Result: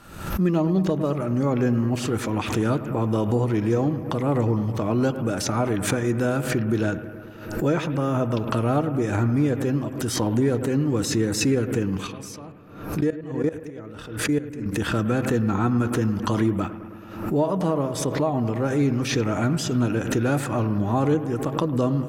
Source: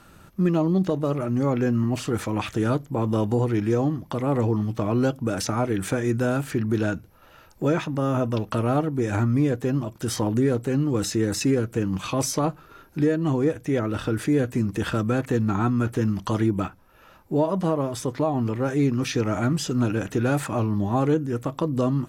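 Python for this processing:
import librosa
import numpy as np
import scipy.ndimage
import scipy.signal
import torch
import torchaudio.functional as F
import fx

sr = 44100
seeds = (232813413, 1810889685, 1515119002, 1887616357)

y = fx.level_steps(x, sr, step_db=20, at=(12.07, 14.66))
y = fx.echo_bbd(y, sr, ms=106, stages=2048, feedback_pct=74, wet_db=-14)
y = fx.pre_swell(y, sr, db_per_s=77.0)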